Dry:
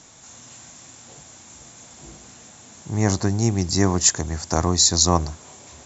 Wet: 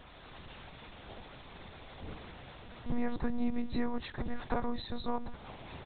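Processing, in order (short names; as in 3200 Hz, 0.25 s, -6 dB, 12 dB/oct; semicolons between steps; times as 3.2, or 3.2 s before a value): compressor 6:1, threshold -27 dBFS, peak gain reduction 15 dB; outdoor echo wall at 140 m, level -28 dB; monotone LPC vocoder at 8 kHz 240 Hz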